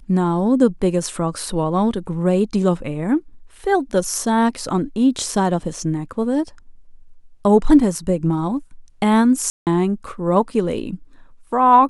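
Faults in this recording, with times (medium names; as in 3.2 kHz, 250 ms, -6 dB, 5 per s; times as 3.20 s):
9.50–9.67 s: dropout 168 ms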